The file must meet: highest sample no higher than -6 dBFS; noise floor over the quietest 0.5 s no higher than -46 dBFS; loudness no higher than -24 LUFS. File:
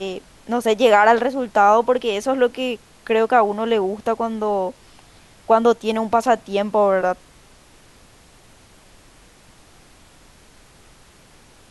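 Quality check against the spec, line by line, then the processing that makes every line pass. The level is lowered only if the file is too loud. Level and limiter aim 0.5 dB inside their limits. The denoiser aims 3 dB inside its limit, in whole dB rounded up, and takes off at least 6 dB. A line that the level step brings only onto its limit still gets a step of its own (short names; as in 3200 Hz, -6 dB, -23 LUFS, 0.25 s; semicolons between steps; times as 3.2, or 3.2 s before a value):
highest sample -3.0 dBFS: fail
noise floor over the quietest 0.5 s -49 dBFS: OK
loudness -18.5 LUFS: fail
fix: gain -6 dB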